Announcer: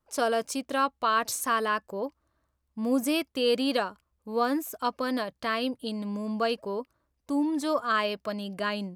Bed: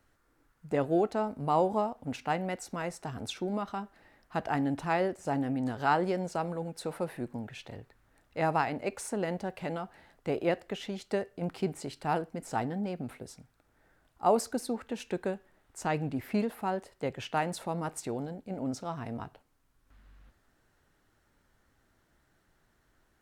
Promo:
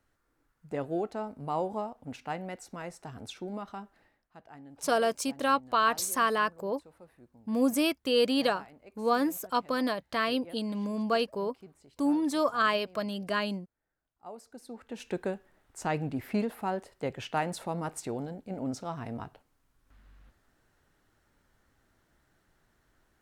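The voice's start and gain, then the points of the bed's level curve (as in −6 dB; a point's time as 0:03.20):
4.70 s, 0.0 dB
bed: 0:04.02 −5 dB
0:04.33 −20 dB
0:14.39 −20 dB
0:15.08 0 dB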